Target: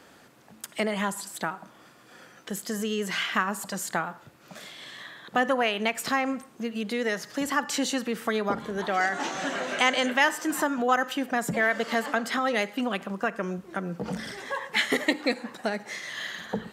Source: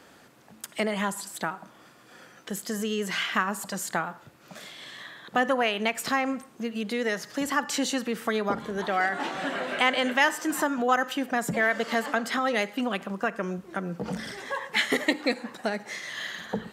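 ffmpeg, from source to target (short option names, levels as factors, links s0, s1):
-filter_complex "[0:a]asettb=1/sr,asplit=3[s0][s1][s2];[s0]atrim=end=8.944[s3];[s1]atrim=start=8.94:end=10.06,asetpts=PTS-STARTPTS,afade=t=in:d=0.004:c=qsin,afade=t=out:st=1.116:d=0.004:c=qsin,equalizer=f=6300:w=2.4:g=13[s4];[s2]atrim=start=10.056[s5];[s3][s4]acrossfade=d=0.004:c1=hsin:c2=qsin[s6];[s6][s5]acrossfade=d=0.004:c1=qsin:c2=hsin"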